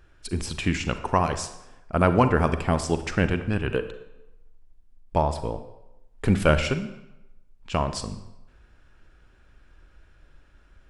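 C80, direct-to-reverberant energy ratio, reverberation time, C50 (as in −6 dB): 13.5 dB, 10.0 dB, 0.90 s, 11.0 dB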